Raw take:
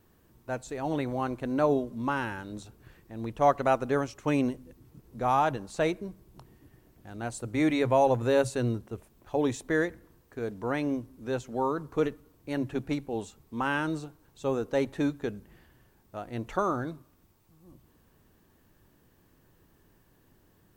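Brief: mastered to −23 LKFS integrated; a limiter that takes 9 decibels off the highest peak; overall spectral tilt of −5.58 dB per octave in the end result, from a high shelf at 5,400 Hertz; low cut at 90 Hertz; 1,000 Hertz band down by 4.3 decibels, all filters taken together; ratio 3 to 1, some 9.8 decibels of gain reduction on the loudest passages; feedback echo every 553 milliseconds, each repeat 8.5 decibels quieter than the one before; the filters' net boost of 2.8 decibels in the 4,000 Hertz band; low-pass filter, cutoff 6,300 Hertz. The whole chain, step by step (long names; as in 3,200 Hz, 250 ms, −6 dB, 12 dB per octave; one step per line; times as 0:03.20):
high-pass filter 90 Hz
low-pass filter 6,300 Hz
parametric band 1,000 Hz −6 dB
parametric band 4,000 Hz +7 dB
high-shelf EQ 5,400 Hz −8 dB
downward compressor 3 to 1, threshold −34 dBFS
brickwall limiter −29.5 dBFS
repeating echo 553 ms, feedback 38%, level −8.5 dB
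level +18 dB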